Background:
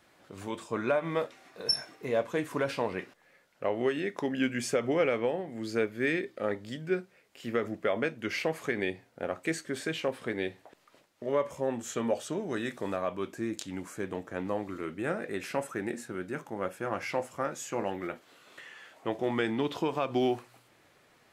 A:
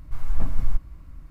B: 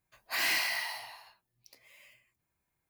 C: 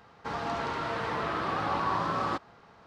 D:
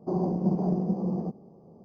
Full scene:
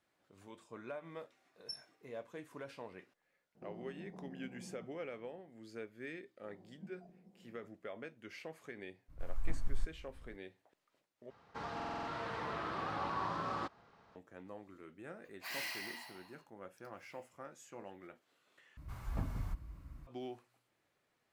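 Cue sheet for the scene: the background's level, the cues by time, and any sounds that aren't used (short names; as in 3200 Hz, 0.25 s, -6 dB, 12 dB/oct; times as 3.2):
background -17.5 dB
3.55 add D -16 dB + compressor 2:1, threshold -39 dBFS
6.37 add D -15.5 dB + spectral noise reduction 20 dB
9.08 add A -13.5 dB, fades 0.02 s
11.3 replace with C -9 dB + stuck buffer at 0.45, samples 2048, times 6
15.12 add B -12.5 dB
18.77 replace with A -5.5 dB + HPF 44 Hz 24 dB/oct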